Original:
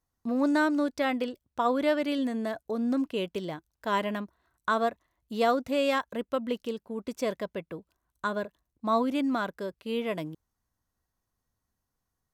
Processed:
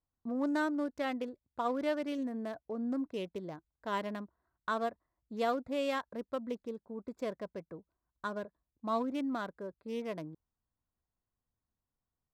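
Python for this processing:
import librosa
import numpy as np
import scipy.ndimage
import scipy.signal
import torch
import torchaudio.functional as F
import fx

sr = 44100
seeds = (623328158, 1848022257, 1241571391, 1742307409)

y = fx.wiener(x, sr, points=15)
y = y * 10.0 ** (-7.0 / 20.0)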